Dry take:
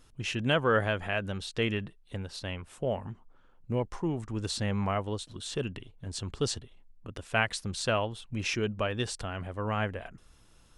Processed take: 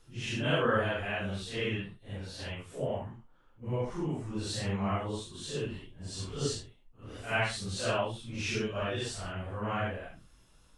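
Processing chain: phase scrambler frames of 0.2 s; gain -2 dB

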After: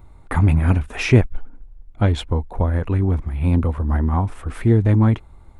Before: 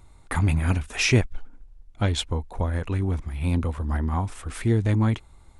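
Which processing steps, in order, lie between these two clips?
bell 6800 Hz -14 dB 2.6 oct; gain +6.5 dB

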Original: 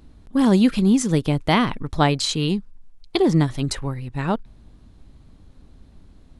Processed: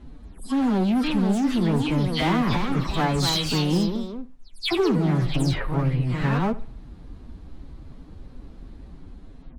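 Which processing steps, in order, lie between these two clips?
spectral delay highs early, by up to 0.112 s; high shelf 3800 Hz -10 dB; in parallel at +1 dB: negative-ratio compressor -27 dBFS, ratio -1; on the sum: overloaded stage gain 15.5 dB; time stretch by phase-locked vocoder 1.5×; on a send at -18 dB: reverb, pre-delay 71 ms; on the sum: echoes that change speed 0.579 s, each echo +2 st, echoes 2, each echo -6 dB; gain -3.5 dB

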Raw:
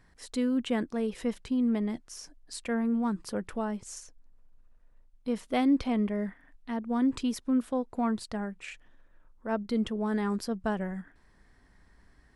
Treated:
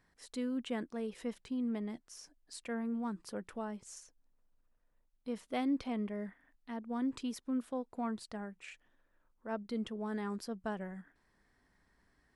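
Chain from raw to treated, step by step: low shelf 98 Hz -9.5 dB; gain -7.5 dB

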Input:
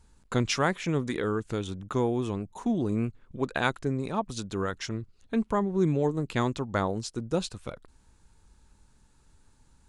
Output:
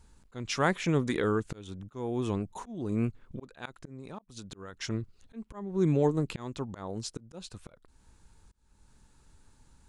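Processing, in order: auto swell 0.407 s; 3.71–4.81 compressor 8:1, threshold -41 dBFS, peak gain reduction 13 dB; gain +1 dB

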